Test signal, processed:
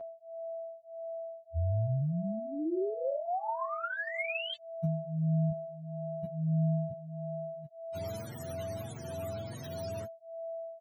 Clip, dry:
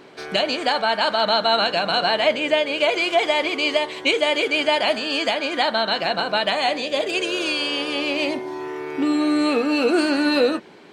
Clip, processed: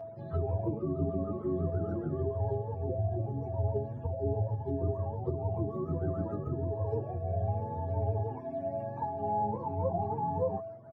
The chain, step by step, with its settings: spectrum mirrored in octaves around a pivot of 500 Hz; compressor, threshold -21 dBFS; whine 660 Hz -31 dBFS; endless flanger 6.9 ms +1.6 Hz; gain -5 dB

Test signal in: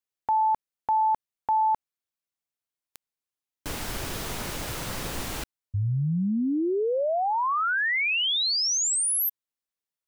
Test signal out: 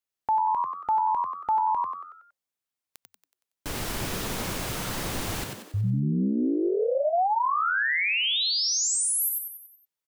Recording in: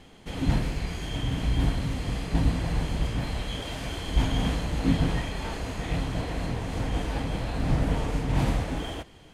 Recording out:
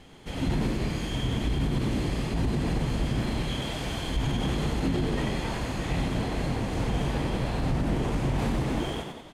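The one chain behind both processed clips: frequency-shifting echo 93 ms, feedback 48%, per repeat +88 Hz, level -4.5 dB; limiter -18.5 dBFS

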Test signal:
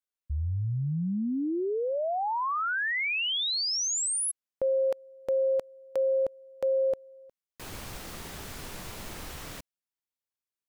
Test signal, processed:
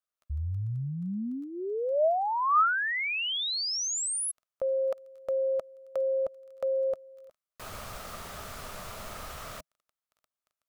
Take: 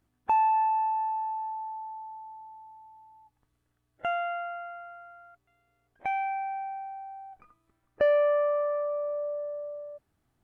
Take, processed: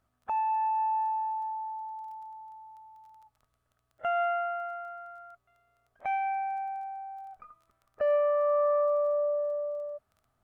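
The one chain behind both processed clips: limiter -25 dBFS; crackle 13/s -48 dBFS; thirty-one-band EQ 160 Hz -3 dB, 315 Hz -10 dB, 630 Hz +9 dB, 1250 Hz +11 dB; gain -2 dB

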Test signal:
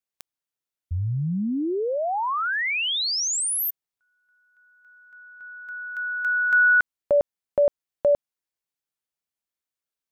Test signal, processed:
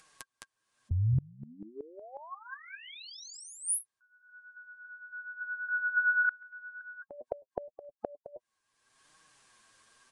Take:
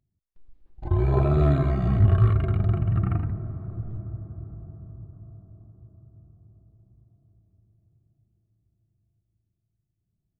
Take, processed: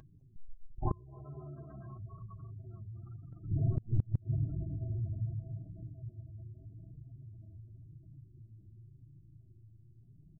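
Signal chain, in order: gate -48 dBFS, range -6 dB; downsampling 22050 Hz; echo 0.212 s -4 dB; spectral gate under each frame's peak -25 dB strong; small resonant body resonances 1100/1600 Hz, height 17 dB, ringing for 60 ms; in parallel at +2.5 dB: compressor 12:1, threshold -28 dBFS; on the sum: flange 0.87 Hz, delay 6.1 ms, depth 3.5 ms, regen +19%; flipped gate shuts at -18 dBFS, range -29 dB; upward compressor, threshold -39 dBFS; gain -1 dB

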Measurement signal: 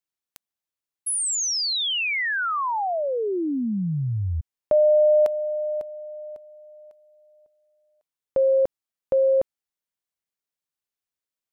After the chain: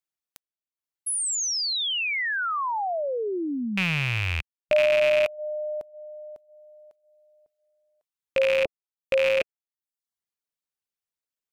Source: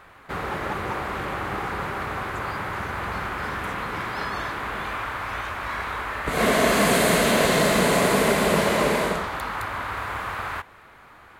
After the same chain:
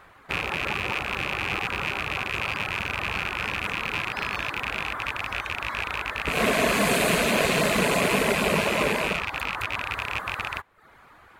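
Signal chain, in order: rattling part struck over -38 dBFS, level -11 dBFS; reverb removal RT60 0.57 s; gain -2 dB

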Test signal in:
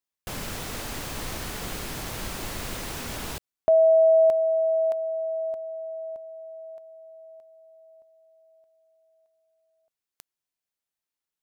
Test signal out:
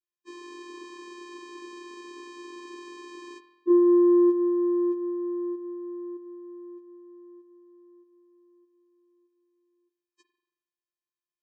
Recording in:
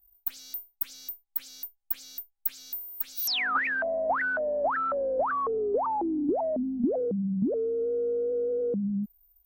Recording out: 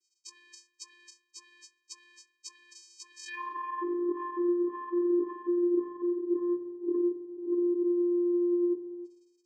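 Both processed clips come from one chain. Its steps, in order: inharmonic rescaling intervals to 76%; spring tank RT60 1 s, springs 45 ms, chirp 45 ms, DRR 9 dB; vocoder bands 8, square 350 Hz

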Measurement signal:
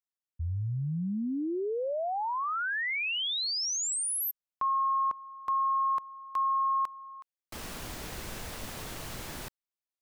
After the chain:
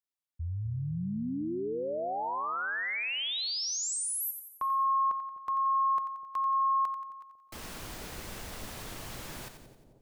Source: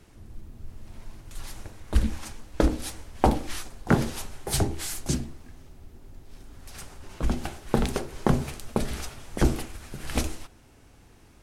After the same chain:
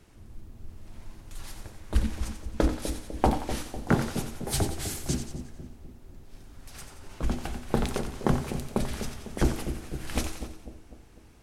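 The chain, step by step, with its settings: split-band echo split 690 Hz, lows 0.25 s, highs 89 ms, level -9 dB; gain -2.5 dB

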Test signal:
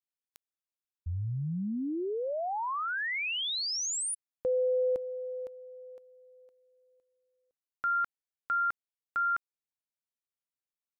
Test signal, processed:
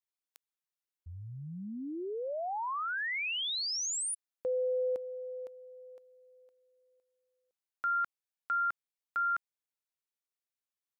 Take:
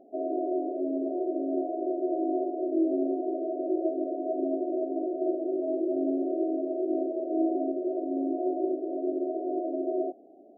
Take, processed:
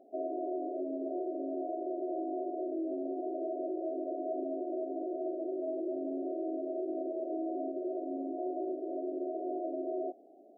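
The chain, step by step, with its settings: limiter -24 dBFS; low shelf 230 Hz -11.5 dB; gain -1.5 dB

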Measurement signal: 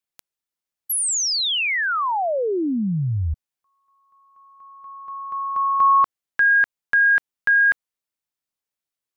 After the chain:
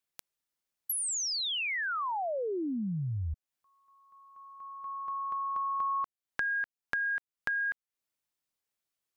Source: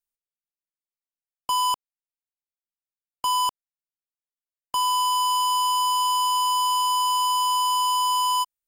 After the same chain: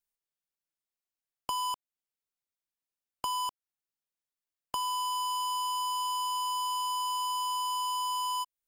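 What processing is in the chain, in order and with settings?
compressor 4:1, threshold -34 dBFS

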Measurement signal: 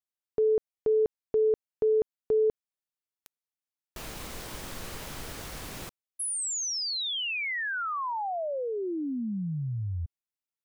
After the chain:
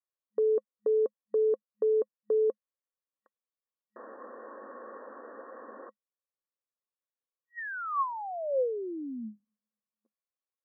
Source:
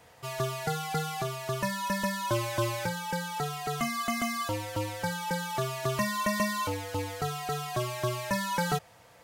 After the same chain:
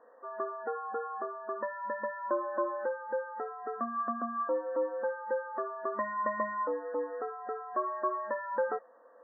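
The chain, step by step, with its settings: FFT band-pass 210–1900 Hz; small resonant body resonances 520/1100 Hz, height 13 dB, ringing for 35 ms; gain -6.5 dB

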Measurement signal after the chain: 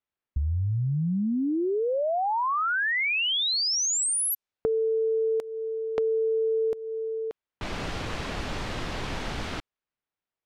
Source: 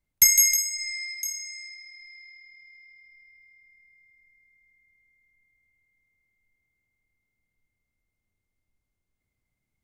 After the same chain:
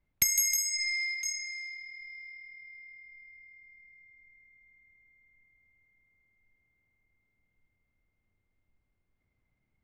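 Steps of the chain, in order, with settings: low-pass opened by the level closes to 2500 Hz, open at -19 dBFS; compressor 4:1, threshold -30 dBFS; gain +4 dB

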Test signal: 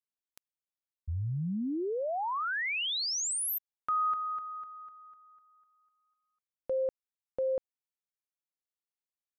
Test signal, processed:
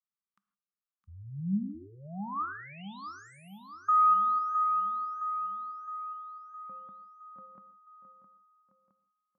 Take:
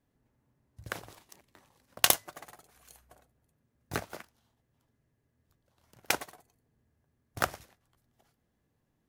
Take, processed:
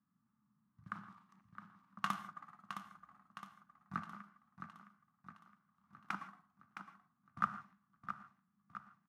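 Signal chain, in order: double band-pass 490 Hz, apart 2.6 oct; harmonic-percussive split percussive -5 dB; on a send: feedback echo 0.664 s, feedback 53%, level -9 dB; on the sum: non-linear reverb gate 0.18 s flat, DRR 11.5 dB; gain +7 dB

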